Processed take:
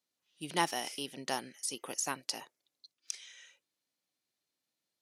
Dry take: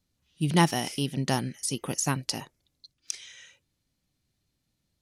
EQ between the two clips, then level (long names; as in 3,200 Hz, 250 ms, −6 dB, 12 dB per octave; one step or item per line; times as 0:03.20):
high-pass filter 420 Hz 12 dB per octave
−5.5 dB